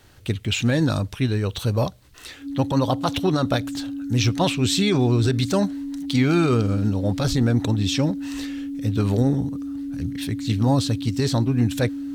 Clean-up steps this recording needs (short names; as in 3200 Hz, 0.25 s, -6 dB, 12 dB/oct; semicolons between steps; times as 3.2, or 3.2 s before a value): notch 280 Hz, Q 30